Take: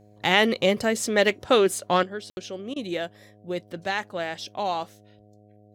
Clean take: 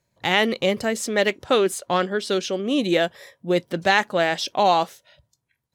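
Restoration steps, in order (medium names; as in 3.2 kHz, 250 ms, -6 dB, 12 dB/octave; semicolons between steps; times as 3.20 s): de-hum 104.4 Hz, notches 7; room tone fill 2.30–2.37 s; interpolate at 2.33/2.74 s, 20 ms; gain correction +9.5 dB, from 2.03 s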